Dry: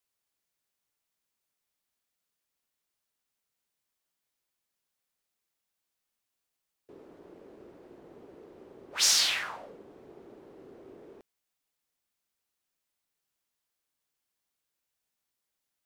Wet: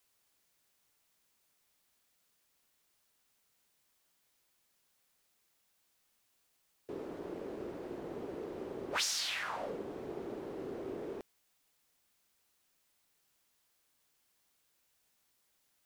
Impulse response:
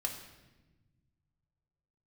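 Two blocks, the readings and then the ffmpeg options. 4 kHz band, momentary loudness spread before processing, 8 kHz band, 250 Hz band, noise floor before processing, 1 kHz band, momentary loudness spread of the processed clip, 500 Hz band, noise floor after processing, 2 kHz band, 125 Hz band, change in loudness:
-10.0 dB, 18 LU, -11.5 dB, +8.5 dB, -85 dBFS, +1.0 dB, 12 LU, +8.0 dB, -76 dBFS, -5.0 dB, no reading, -14.5 dB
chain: -af "acompressor=threshold=0.00891:ratio=16,volume=2.82"

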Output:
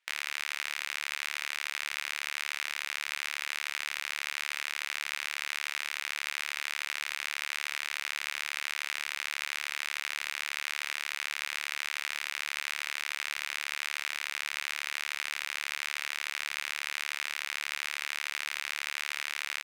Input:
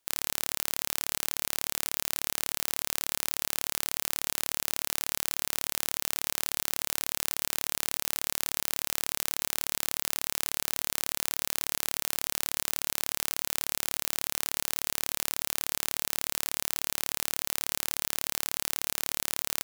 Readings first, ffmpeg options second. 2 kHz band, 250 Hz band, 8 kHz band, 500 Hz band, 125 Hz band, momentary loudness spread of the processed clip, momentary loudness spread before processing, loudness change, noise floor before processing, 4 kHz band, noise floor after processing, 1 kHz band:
+7.0 dB, under -15 dB, -9.5 dB, -10.0 dB, under -20 dB, 0 LU, 0 LU, -3.5 dB, -76 dBFS, -0.5 dB, -42 dBFS, -1.0 dB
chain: -af "bandpass=f=2100:t=q:w=2.3:csg=0,aecho=1:1:15|69:0.501|0.188,volume=2.51"

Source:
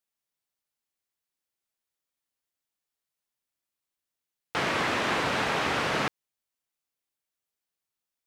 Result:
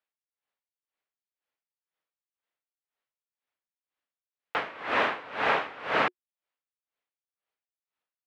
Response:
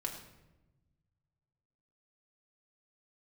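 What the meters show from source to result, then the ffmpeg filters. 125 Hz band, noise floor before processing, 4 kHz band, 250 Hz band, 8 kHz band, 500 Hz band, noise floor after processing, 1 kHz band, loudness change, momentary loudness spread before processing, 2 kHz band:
-11.5 dB, under -85 dBFS, -5.5 dB, -6.5 dB, under -15 dB, -0.5 dB, under -85 dBFS, 0.0 dB, -1.0 dB, 5 LU, -0.5 dB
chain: -filter_complex "[0:a]acrossover=split=320 3300:gain=0.224 1 0.0794[s0][s1][s2];[s0][s1][s2]amix=inputs=3:normalize=0,bandreject=f=360:w=12,aeval=exprs='val(0)*pow(10,-22*(0.5-0.5*cos(2*PI*2*n/s))/20)':c=same,volume=2"

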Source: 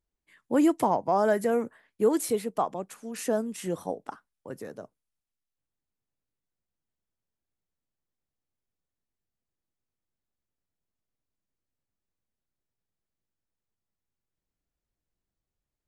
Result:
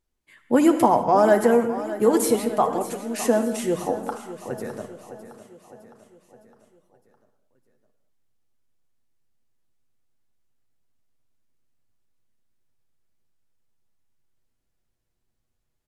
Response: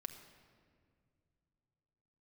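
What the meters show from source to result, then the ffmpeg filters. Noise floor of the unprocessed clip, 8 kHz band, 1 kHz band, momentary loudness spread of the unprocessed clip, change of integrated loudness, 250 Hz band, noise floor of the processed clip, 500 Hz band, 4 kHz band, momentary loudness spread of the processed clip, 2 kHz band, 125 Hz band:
under -85 dBFS, +7.0 dB, +7.5 dB, 18 LU, +6.0 dB, +6.5 dB, -75 dBFS, +7.0 dB, +7.0 dB, 16 LU, +7.0 dB, +6.0 dB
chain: -filter_complex "[0:a]aecho=1:1:610|1220|1830|2440|3050:0.2|0.106|0.056|0.0297|0.0157[s0];[1:a]atrim=start_sample=2205,atrim=end_sample=6174,asetrate=27342,aresample=44100[s1];[s0][s1]afir=irnorm=-1:irlink=0,volume=2.51"

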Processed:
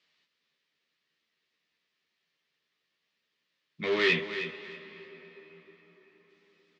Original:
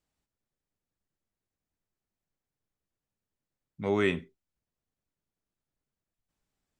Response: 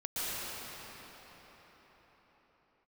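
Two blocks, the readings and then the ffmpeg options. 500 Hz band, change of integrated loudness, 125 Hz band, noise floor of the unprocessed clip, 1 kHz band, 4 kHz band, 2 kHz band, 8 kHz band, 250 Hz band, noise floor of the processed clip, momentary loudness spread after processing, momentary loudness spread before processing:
+0.5 dB, +1.5 dB, -5.0 dB, under -85 dBFS, -1.0 dB, +10.5 dB, +7.5 dB, no reading, -4.0 dB, -82 dBFS, 22 LU, 10 LU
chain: -filter_complex "[0:a]asoftclip=type=hard:threshold=0.0531,asplit=2[s0][s1];[s1]highpass=f=720:p=1,volume=4.47,asoftclip=type=tanh:threshold=0.0531[s2];[s0][s2]amix=inputs=2:normalize=0,lowpass=f=2900:p=1,volume=0.501,aexciter=amount=2.6:drive=9.6:freq=2300,highpass=150,equalizer=f=180:t=q:w=4:g=6,equalizer=f=420:t=q:w=4:g=4,equalizer=f=790:t=q:w=4:g=-6,equalizer=f=1200:t=q:w=4:g=5,equalizer=f=1800:t=q:w=4:g=10,lowpass=f=4400:w=0.5412,lowpass=f=4400:w=1.3066,asplit=2[s3][s4];[s4]adelay=13,volume=0.631[s5];[s3][s5]amix=inputs=2:normalize=0,aecho=1:1:314|628|942:0.282|0.0705|0.0176,asplit=2[s6][s7];[1:a]atrim=start_sample=2205,asetrate=42777,aresample=44100,adelay=78[s8];[s7][s8]afir=irnorm=-1:irlink=0,volume=0.0794[s9];[s6][s9]amix=inputs=2:normalize=0,volume=0.841"

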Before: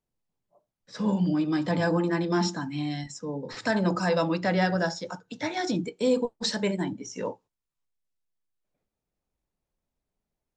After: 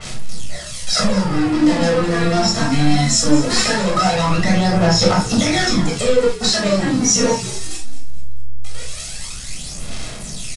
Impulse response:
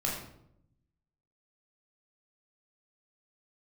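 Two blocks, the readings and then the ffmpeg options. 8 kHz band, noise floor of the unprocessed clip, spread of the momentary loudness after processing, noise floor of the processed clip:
+23.0 dB, under -85 dBFS, 15 LU, -30 dBFS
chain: -filter_complex "[0:a]aeval=exprs='val(0)+0.5*0.0188*sgn(val(0))':c=same,asplit=2[s0][s1];[s1]alimiter=limit=0.1:level=0:latency=1,volume=1.26[s2];[s0][s2]amix=inputs=2:normalize=0,acompressor=threshold=0.0562:ratio=12,acrossover=split=2200[s3][s4];[s3]acrusher=bits=4:mix=0:aa=0.5[s5];[s5][s4]amix=inputs=2:normalize=0,aphaser=in_gain=1:out_gain=1:delay=4.4:decay=0.67:speed=0.2:type=sinusoidal,asoftclip=type=tanh:threshold=0.0944,aresample=22050,aresample=44100,asplit=5[s6][s7][s8][s9][s10];[s7]adelay=218,afreqshift=-70,volume=0.188[s11];[s8]adelay=436,afreqshift=-140,volume=0.0813[s12];[s9]adelay=654,afreqshift=-210,volume=0.0347[s13];[s10]adelay=872,afreqshift=-280,volume=0.015[s14];[s6][s11][s12][s13][s14]amix=inputs=5:normalize=0[s15];[1:a]atrim=start_sample=2205,atrim=end_sample=3969[s16];[s15][s16]afir=irnorm=-1:irlink=0,adynamicequalizer=threshold=0.01:dfrequency=4000:dqfactor=0.7:tfrequency=4000:tqfactor=0.7:attack=5:release=100:ratio=0.375:range=3.5:mode=boostabove:tftype=highshelf,volume=1.68"

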